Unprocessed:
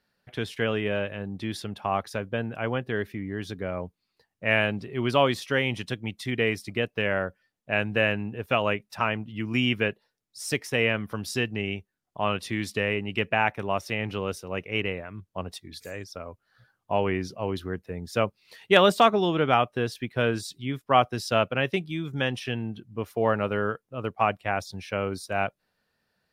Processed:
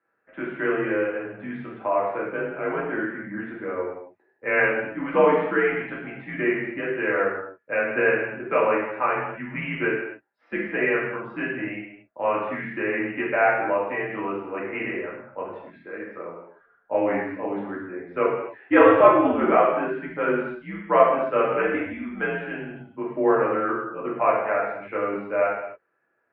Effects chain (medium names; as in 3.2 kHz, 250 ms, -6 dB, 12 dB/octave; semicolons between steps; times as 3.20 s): gated-style reverb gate 310 ms falling, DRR -6 dB; mistuned SSB -86 Hz 320–2200 Hz; trim -2 dB